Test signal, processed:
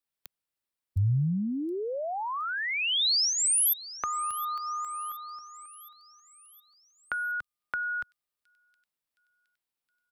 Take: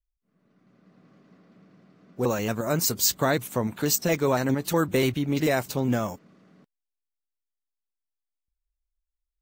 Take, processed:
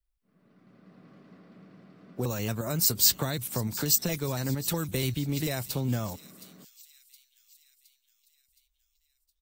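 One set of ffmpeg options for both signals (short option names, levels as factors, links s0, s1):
-filter_complex "[0:a]equalizer=f=6500:t=o:w=0.31:g=-6.5,acrossover=split=140|3600[s0][s1][s2];[s1]acompressor=threshold=0.02:ratio=12[s3];[s2]aecho=1:1:717|1434|2151|2868|3585:0.178|0.0942|0.05|0.0265|0.014[s4];[s0][s3][s4]amix=inputs=3:normalize=0,volume=1.41"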